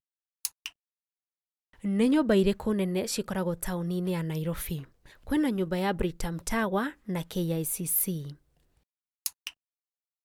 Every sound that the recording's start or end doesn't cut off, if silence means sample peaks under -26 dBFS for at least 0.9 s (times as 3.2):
1.86–8.14